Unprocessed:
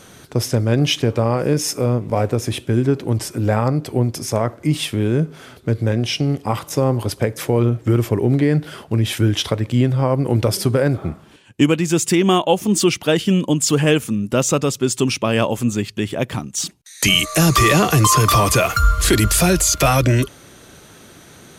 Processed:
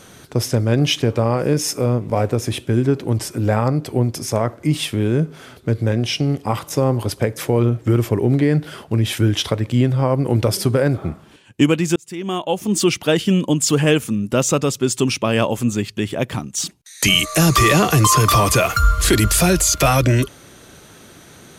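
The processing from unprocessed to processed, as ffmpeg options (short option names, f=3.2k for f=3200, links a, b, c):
-filter_complex "[0:a]asplit=2[a][b];[a]atrim=end=11.96,asetpts=PTS-STARTPTS,afade=t=out:st=11.956:d=0.004:c=hsin[c];[b]atrim=start=11.96,asetpts=PTS-STARTPTS,afade=t=in:d=0.96[d];[c][d]concat=n=2:v=0:a=1"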